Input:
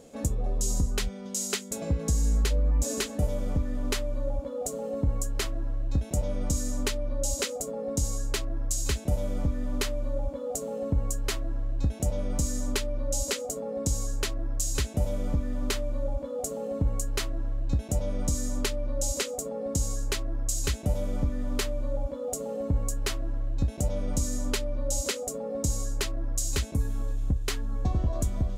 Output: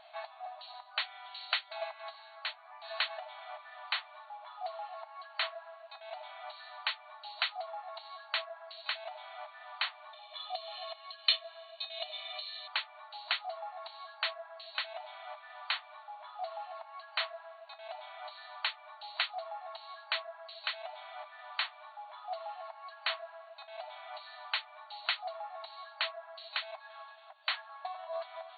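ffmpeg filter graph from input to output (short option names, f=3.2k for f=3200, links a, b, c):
-filter_complex "[0:a]asettb=1/sr,asplit=3[a][b][c];[a]atrim=end=10.134[d];[b]atrim=start=10.13:end=12.68,asetpts=PTS-STARTPTS,afade=t=in:d=0.004:c=qsin,afade=t=out:st=2.546:d=0.004:c=qsin,lowpass=8.6k,highshelf=f=2.3k:t=q:w=1.5:g=13.5,aecho=1:1:1.7:0.77,atrim=end_sample=112455[e];[c]atrim=start=12.676[f];[d][e]acrossfade=d=0.004:c1=hsin:c2=qsin[g];[g][f]acrossfade=d=0.004:c1=qsin:c2=hsin,acompressor=threshold=-27dB:ratio=6,afftfilt=real='re*between(b*sr/4096,610,4500)':imag='im*between(b*sr/4096,610,4500)':win_size=4096:overlap=0.75,volume=5.5dB"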